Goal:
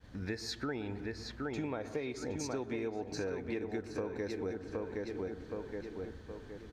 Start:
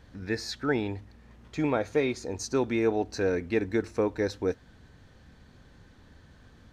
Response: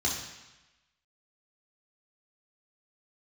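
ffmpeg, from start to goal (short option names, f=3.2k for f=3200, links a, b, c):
-filter_complex "[0:a]asplit=2[a][b];[b]adelay=768,lowpass=f=3.6k:p=1,volume=-6.5dB,asplit=2[c][d];[d]adelay=768,lowpass=f=3.6k:p=1,volume=0.42,asplit=2[e][f];[f]adelay=768,lowpass=f=3.6k:p=1,volume=0.42,asplit=2[g][h];[h]adelay=768,lowpass=f=3.6k:p=1,volume=0.42,asplit=2[i][j];[j]adelay=768,lowpass=f=3.6k:p=1,volume=0.42[k];[c][e][g][i][k]amix=inputs=5:normalize=0[l];[a][l]amix=inputs=2:normalize=0,acontrast=56,agate=range=-33dB:threshold=-45dB:ratio=3:detection=peak,asplit=2[m][n];[1:a]atrim=start_sample=2205,lowpass=2.2k,adelay=114[o];[n][o]afir=irnorm=-1:irlink=0,volume=-24dB[p];[m][p]amix=inputs=2:normalize=0,acompressor=threshold=-29dB:ratio=6,volume=-6dB"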